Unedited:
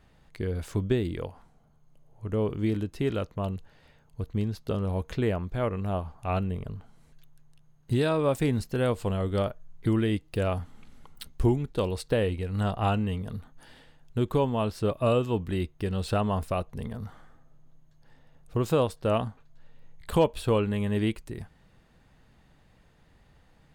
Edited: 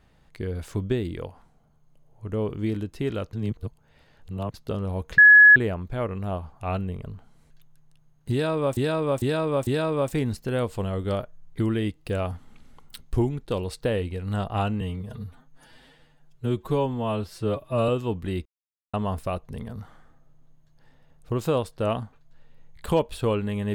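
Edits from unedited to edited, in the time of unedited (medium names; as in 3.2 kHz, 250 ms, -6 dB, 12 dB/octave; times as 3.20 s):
3.33–4.54 s: reverse
5.18 s: add tone 1.69 kHz -8 dBFS 0.38 s
7.94–8.39 s: loop, 4 plays
13.08–15.13 s: stretch 1.5×
15.70–16.18 s: mute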